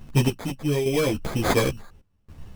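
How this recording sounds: aliases and images of a low sample rate 2.8 kHz, jitter 0%; random-step tremolo, depth 95%; a shimmering, thickened sound

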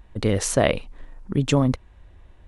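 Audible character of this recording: noise floor -52 dBFS; spectral tilt -5.5 dB/octave

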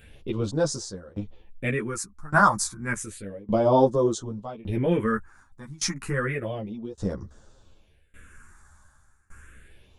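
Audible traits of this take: phasing stages 4, 0.31 Hz, lowest notch 440–2400 Hz; tremolo saw down 0.86 Hz, depth 95%; a shimmering, thickened sound

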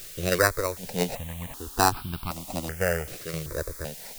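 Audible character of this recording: aliases and images of a low sample rate 3.3 kHz, jitter 0%; tremolo saw down 1.2 Hz, depth 65%; a quantiser's noise floor 8-bit, dither triangular; notches that jump at a steady rate 2.6 Hz 240–1900 Hz

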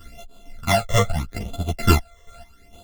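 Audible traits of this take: a buzz of ramps at a fixed pitch in blocks of 64 samples; phasing stages 12, 0.79 Hz, lowest notch 250–1900 Hz; chopped level 2.2 Hz, depth 60%, duty 35%; a shimmering, thickened sound

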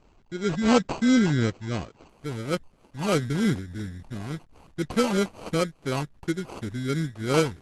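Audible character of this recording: a quantiser's noise floor 10-bit, dither none; phasing stages 6, 2.9 Hz, lowest notch 450–3900 Hz; aliases and images of a low sample rate 1.8 kHz, jitter 0%; Opus

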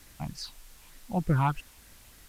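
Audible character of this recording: phasing stages 6, 3.3 Hz, lowest notch 410–1000 Hz; a quantiser's noise floor 10-bit, dither triangular; AC-3

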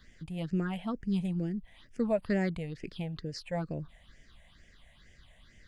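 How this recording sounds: phasing stages 6, 2.2 Hz, lowest notch 330–1100 Hz

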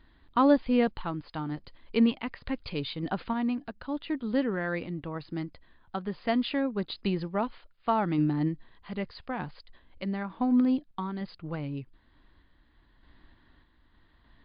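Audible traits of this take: random-step tremolo 3.3 Hz; MP3

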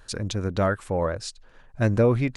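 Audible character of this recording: noise floor -53 dBFS; spectral tilt -6.5 dB/octave

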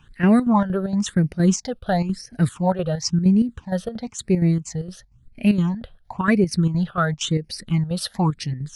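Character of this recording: chopped level 4.3 Hz, depth 60%, duty 70%; phasing stages 8, 0.97 Hz, lowest notch 270–1100 Hz

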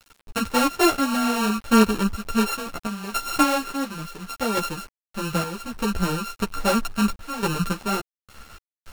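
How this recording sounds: a buzz of ramps at a fixed pitch in blocks of 32 samples; random-step tremolo, depth 100%; a quantiser's noise floor 8-bit, dither none; a shimmering, thickened sound

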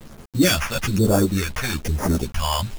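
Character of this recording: aliases and images of a low sample rate 4 kHz, jitter 0%; phasing stages 2, 1.1 Hz, lowest notch 290–2800 Hz; a quantiser's noise floor 8-bit, dither none; a shimmering, thickened sound

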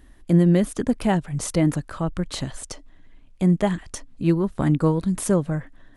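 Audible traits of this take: noise floor -51 dBFS; spectral tilt -8.0 dB/octave

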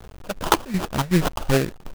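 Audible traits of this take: phasing stages 8, 2.6 Hz, lowest notch 300–3800 Hz; a quantiser's noise floor 8-bit, dither none; chopped level 2.7 Hz, depth 60%, duty 75%; aliases and images of a low sample rate 2.1 kHz, jitter 20%

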